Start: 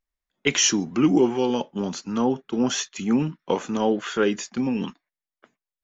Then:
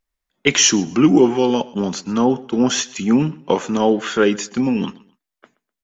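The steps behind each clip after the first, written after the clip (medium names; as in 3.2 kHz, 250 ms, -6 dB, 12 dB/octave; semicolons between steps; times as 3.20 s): feedback delay 126 ms, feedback 29%, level -22 dB; trim +6 dB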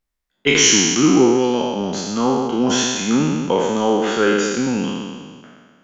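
spectral sustain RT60 1.68 s; trim -3.5 dB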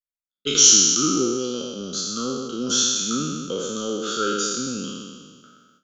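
gate with hold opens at -39 dBFS; FFT filter 520 Hz 0 dB, 910 Hz -25 dB, 1.3 kHz +13 dB, 1.9 kHz -18 dB, 3.6 kHz +12 dB; trim -9.5 dB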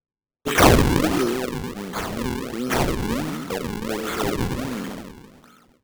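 decimation with a swept rate 40×, swing 160% 1.4 Hz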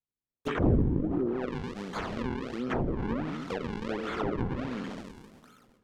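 low-pass that closes with the level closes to 330 Hz, closed at -15.5 dBFS; on a send at -22 dB: reverberation RT60 3.5 s, pre-delay 22 ms; on the sum: trim -6.5 dB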